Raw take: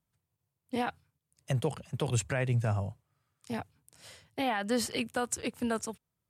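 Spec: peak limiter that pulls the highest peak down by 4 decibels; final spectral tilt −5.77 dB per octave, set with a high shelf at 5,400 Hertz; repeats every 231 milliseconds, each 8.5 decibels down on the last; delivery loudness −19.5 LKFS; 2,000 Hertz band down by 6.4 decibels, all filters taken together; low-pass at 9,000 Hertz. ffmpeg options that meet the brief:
ffmpeg -i in.wav -af "lowpass=9000,equalizer=frequency=2000:width_type=o:gain=-8,highshelf=frequency=5400:gain=-4.5,alimiter=limit=-24dB:level=0:latency=1,aecho=1:1:231|462|693|924:0.376|0.143|0.0543|0.0206,volume=16dB" out.wav

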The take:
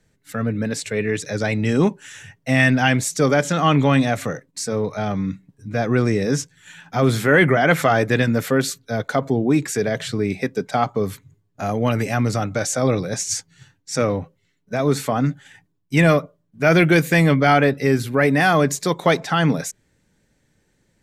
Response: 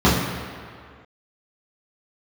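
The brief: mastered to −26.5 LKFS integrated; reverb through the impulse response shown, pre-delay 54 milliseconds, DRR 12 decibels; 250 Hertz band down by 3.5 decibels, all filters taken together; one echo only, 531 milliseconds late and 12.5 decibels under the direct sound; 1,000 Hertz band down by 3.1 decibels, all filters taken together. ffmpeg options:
-filter_complex "[0:a]equalizer=frequency=250:width_type=o:gain=-4.5,equalizer=frequency=1000:width_type=o:gain=-4.5,aecho=1:1:531:0.237,asplit=2[link_01][link_02];[1:a]atrim=start_sample=2205,adelay=54[link_03];[link_02][link_03]afir=irnorm=-1:irlink=0,volume=-35.5dB[link_04];[link_01][link_04]amix=inputs=2:normalize=0,volume=-6dB"

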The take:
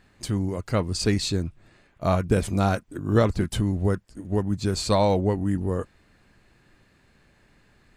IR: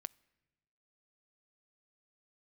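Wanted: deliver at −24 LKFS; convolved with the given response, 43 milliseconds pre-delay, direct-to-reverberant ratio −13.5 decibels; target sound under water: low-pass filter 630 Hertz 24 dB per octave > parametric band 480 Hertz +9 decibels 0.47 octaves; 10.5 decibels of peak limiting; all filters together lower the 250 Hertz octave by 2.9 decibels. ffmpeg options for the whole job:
-filter_complex "[0:a]equalizer=frequency=250:width_type=o:gain=-5,alimiter=limit=-18dB:level=0:latency=1,asplit=2[link_01][link_02];[1:a]atrim=start_sample=2205,adelay=43[link_03];[link_02][link_03]afir=irnorm=-1:irlink=0,volume=17.5dB[link_04];[link_01][link_04]amix=inputs=2:normalize=0,lowpass=frequency=630:width=0.5412,lowpass=frequency=630:width=1.3066,equalizer=frequency=480:width_type=o:width=0.47:gain=9,volume=-9dB"

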